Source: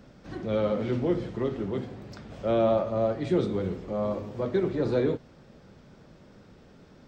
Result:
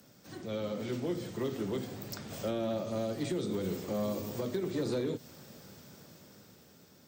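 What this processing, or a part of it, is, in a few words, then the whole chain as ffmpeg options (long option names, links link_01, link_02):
FM broadcast chain: -filter_complex "[0:a]highpass=frequency=80:width=0.5412,highpass=frequency=80:width=1.3066,dynaudnorm=framelen=350:gausssize=9:maxgain=9dB,acrossover=split=160|390|2500[link_01][link_02][link_03][link_04];[link_01]acompressor=threshold=-36dB:ratio=4[link_05];[link_02]acompressor=threshold=-22dB:ratio=4[link_06];[link_03]acompressor=threshold=-30dB:ratio=4[link_07];[link_04]acompressor=threshold=-46dB:ratio=4[link_08];[link_05][link_06][link_07][link_08]amix=inputs=4:normalize=0,aemphasis=mode=production:type=50fm,alimiter=limit=-16dB:level=0:latency=1:release=188,asoftclip=type=hard:threshold=-18.5dB,lowpass=frequency=15000:width=0.5412,lowpass=frequency=15000:width=1.3066,aemphasis=mode=production:type=50fm,volume=-7.5dB"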